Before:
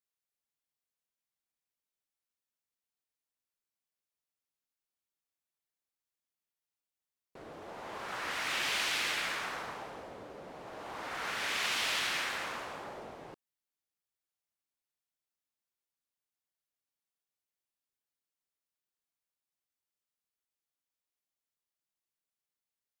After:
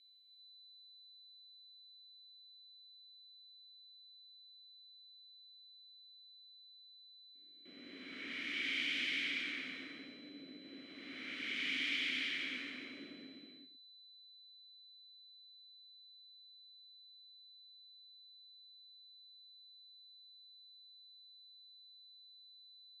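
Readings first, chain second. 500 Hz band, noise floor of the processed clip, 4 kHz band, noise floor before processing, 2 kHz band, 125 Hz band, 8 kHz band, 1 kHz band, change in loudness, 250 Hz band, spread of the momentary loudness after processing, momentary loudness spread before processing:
-14.0 dB, -60 dBFS, -3.5 dB, under -85 dBFS, -4.0 dB, under -10 dB, -18.0 dB, -22.0 dB, -6.0 dB, +1.5 dB, 21 LU, 18 LU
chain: gate with hold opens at -38 dBFS; whine 4000 Hz -51 dBFS; vowel filter i; non-linear reverb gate 0.43 s flat, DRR -2.5 dB; gain +3.5 dB

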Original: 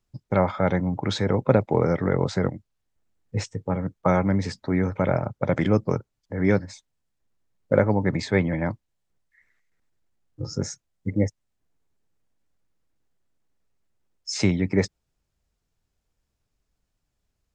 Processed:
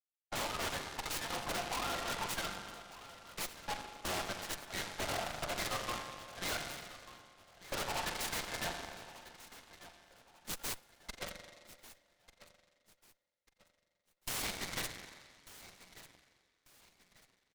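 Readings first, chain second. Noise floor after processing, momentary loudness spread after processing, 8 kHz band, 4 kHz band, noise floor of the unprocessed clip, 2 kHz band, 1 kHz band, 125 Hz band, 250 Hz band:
-84 dBFS, 18 LU, -1.0 dB, -1.5 dB, -78 dBFS, -7.0 dB, -9.0 dB, -25.5 dB, -25.0 dB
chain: per-bin expansion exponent 2; steep high-pass 610 Hz 96 dB/oct; gate with hold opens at -55 dBFS; LPF 6700 Hz 24 dB/oct; comb 5.7 ms, depth 59%; compressor 2.5:1, threshold -37 dBFS, peak gain reduction 9.5 dB; wavefolder -38.5 dBFS; spring tank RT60 1.9 s, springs 39 ms, chirp 75 ms, DRR 4 dB; added harmonics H 8 -13 dB, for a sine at -32.5 dBFS; on a send: feedback echo 1.193 s, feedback 33%, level -16.5 dB; on the sum: noise-modulated delay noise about 1700 Hz, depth 0.093 ms; gain +5.5 dB

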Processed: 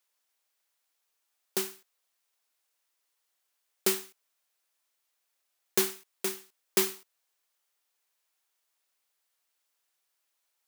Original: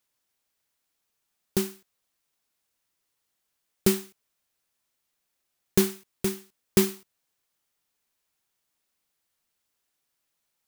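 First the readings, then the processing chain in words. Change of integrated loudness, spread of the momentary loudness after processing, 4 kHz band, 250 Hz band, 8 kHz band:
-3.0 dB, 9 LU, 0.0 dB, -11.5 dB, 0.0 dB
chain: HPF 490 Hz 12 dB/oct

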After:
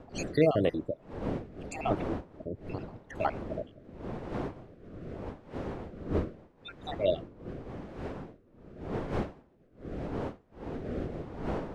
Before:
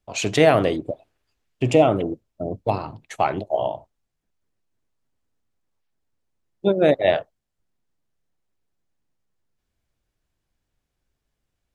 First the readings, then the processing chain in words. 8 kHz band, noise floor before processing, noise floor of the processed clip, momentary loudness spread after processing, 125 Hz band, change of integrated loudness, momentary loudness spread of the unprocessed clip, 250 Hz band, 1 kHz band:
n/a, -79 dBFS, -61 dBFS, 15 LU, -6.5 dB, -14.0 dB, 15 LU, -7.5 dB, -11.5 dB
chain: random spectral dropouts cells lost 68%; wind noise 480 Hz -32 dBFS; rotary speaker horn 0.85 Hz; gain -5 dB

